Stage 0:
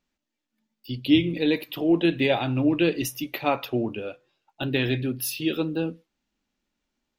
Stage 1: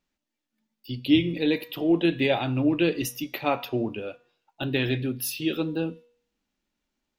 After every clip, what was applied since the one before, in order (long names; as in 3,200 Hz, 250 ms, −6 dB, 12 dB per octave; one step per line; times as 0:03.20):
hum removal 240.4 Hz, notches 34
level −1 dB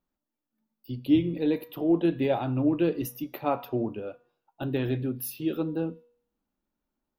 flat-topped bell 4,100 Hz −11 dB 2.7 octaves
level −1.5 dB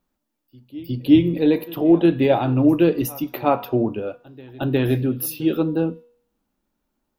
backwards echo 360 ms −21.5 dB
level +8.5 dB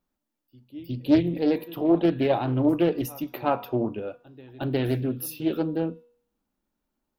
highs frequency-modulated by the lows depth 0.37 ms
level −5.5 dB